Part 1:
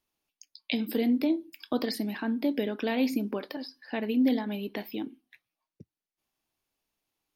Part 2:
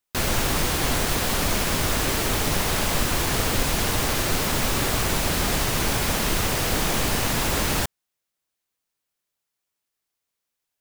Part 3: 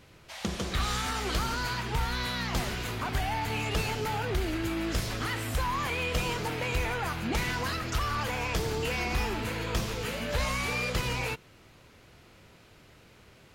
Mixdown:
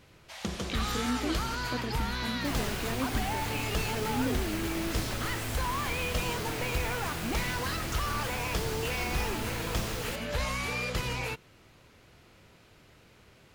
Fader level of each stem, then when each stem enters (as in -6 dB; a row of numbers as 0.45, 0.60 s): -8.0, -15.5, -2.0 dB; 0.00, 2.30, 0.00 s